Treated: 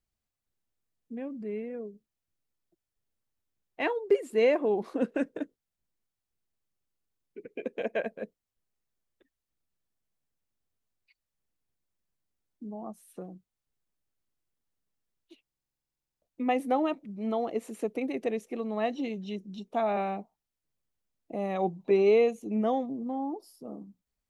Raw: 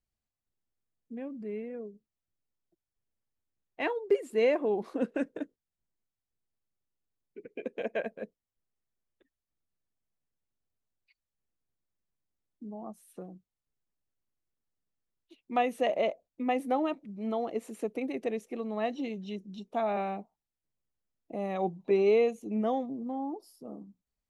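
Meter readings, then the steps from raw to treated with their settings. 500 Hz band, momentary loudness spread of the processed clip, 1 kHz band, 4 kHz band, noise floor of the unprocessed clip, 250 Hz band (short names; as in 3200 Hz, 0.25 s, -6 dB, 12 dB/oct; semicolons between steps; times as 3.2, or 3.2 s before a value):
+1.5 dB, 19 LU, +0.5 dB, 0.0 dB, under -85 dBFS, +2.0 dB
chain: stuck buffer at 15.43, samples 2048, times 16; gain +2 dB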